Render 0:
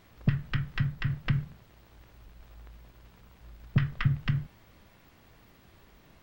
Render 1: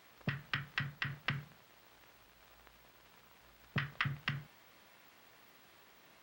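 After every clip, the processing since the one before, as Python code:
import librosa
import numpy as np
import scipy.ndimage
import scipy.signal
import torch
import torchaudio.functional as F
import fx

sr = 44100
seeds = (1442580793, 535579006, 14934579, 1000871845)

y = fx.highpass(x, sr, hz=770.0, slope=6)
y = y * librosa.db_to_amplitude(1.0)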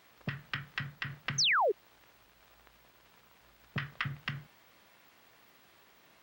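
y = fx.spec_paint(x, sr, seeds[0], shape='fall', start_s=1.38, length_s=0.34, low_hz=360.0, high_hz=6600.0, level_db=-27.0)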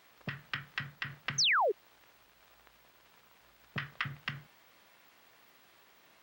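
y = fx.low_shelf(x, sr, hz=280.0, db=-5.0)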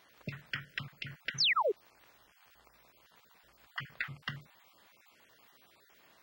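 y = fx.spec_dropout(x, sr, seeds[1], share_pct=24)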